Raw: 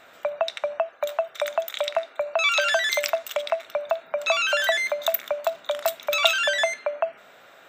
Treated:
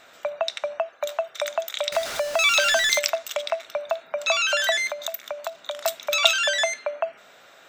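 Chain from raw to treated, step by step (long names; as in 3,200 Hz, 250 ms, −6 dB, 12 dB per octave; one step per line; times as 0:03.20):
0:01.92–0:02.99: converter with a step at zero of −27 dBFS
parametric band 5,800 Hz +7.5 dB 1.4 octaves
0:04.90–0:05.85: downward compressor 5 to 1, threshold −26 dBFS, peak gain reduction 8.5 dB
level −1.5 dB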